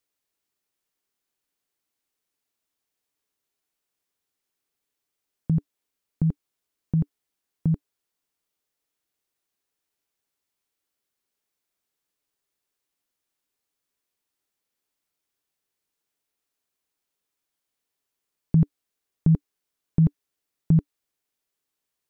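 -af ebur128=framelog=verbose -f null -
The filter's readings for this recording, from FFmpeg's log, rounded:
Integrated loudness:
  I:         -25.5 LUFS
  Threshold: -35.8 LUFS
Loudness range:
  LRA:        10.1 LU
  Threshold: -50.1 LUFS
  LRA low:   -36.1 LUFS
  LRA high:  -26.0 LUFS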